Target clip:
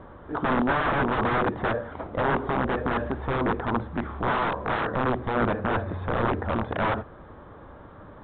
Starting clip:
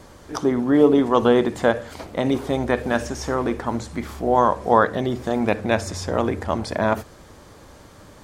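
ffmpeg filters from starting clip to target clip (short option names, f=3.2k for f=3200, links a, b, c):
-af "aeval=exprs='(mod(7.5*val(0)+1,2)-1)/7.5':c=same,highshelf=f=1.9k:t=q:w=1.5:g=-10" -ar 8000 -c:a pcm_alaw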